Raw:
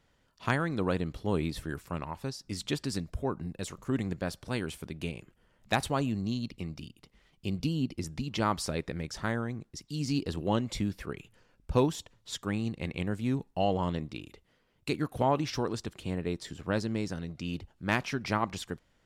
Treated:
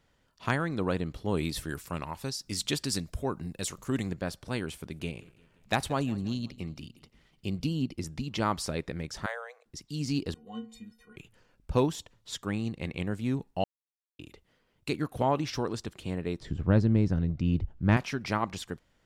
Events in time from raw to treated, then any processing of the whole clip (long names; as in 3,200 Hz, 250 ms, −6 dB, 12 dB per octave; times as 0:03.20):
0:01.37–0:04.11: high-shelf EQ 3,100 Hz +9.5 dB
0:04.73–0:07.85: repeating echo 175 ms, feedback 48%, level −21 dB
0:09.26–0:09.66: Chebyshev high-pass with heavy ripple 470 Hz, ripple 3 dB
0:10.34–0:11.16: stiff-string resonator 220 Hz, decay 0.4 s, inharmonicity 0.03
0:13.64–0:14.19: silence
0:16.40–0:17.97: RIAA equalisation playback